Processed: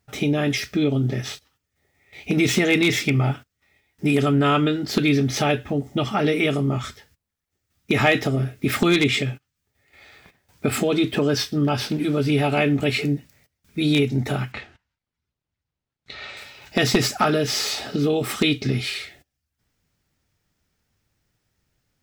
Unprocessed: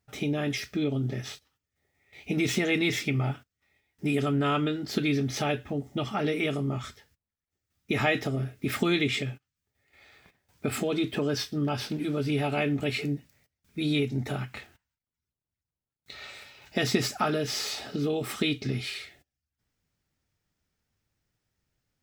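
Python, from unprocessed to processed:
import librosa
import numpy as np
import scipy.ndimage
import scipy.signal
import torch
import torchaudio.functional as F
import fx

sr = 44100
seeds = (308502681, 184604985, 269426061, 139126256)

y = np.minimum(x, 2.0 * 10.0 ** (-16.5 / 20.0) - x)
y = fx.lowpass(y, sr, hz=4600.0, slope=12, at=(14.52, 16.37))
y = F.gain(torch.from_numpy(y), 7.5).numpy()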